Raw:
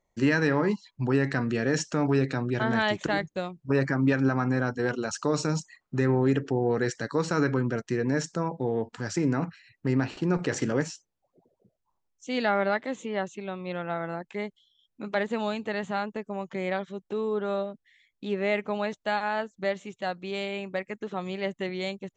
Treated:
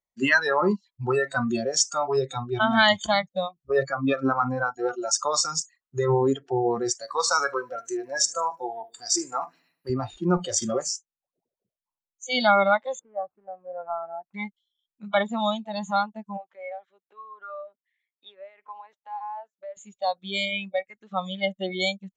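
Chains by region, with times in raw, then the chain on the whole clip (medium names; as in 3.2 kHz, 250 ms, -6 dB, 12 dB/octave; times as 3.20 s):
7.00–9.90 s: tone controls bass -10 dB, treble +4 dB + band-stop 6.8 kHz, Q 27 + feedback delay 75 ms, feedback 54%, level -15 dB
12.99–14.34 s: median filter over 25 samples + low-pass 1.4 kHz 24 dB/octave + bass shelf 430 Hz -6.5 dB
16.37–19.77 s: three-band isolator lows -24 dB, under 420 Hz, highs -15 dB, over 2.6 kHz + compression 4:1, threshold -36 dBFS
whole clip: spectral noise reduction 25 dB; tilt shelf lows -4.5 dB; trim +8 dB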